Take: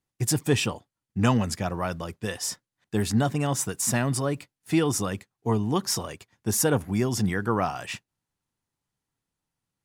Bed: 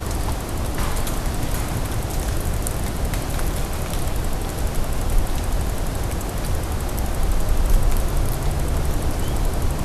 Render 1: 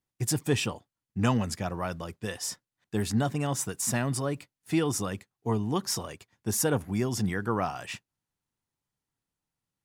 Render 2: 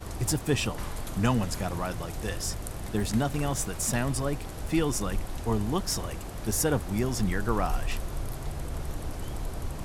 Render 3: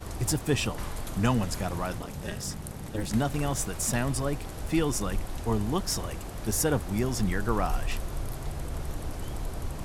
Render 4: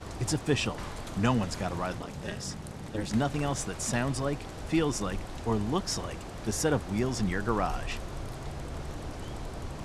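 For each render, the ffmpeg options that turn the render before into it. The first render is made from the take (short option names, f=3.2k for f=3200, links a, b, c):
-af "volume=-3.5dB"
-filter_complex "[1:a]volume=-12.5dB[a];[0:a][a]amix=inputs=2:normalize=0"
-filter_complex "[0:a]asettb=1/sr,asplit=3[a][b][c];[a]atrim=end=1.984[d];[b]atrim=start=1.98:end=3.11,asetpts=PTS-STARTPTS,afade=t=in:d=0.004:c=qsin,afade=t=out:st=1.126:d=0.004:c=qsin,aeval=exprs='val(0)*sin(2*PI*110*n/s)':c=same[e];[c]atrim=start=3.106[f];[d][e]acrossfade=d=0.004:c1=hsin:c2=qsin[g];[g][f]acrossfade=d=0.004:c1=qsin:c2=hsin"
-af "lowpass=7k,lowshelf=f=66:g=-9"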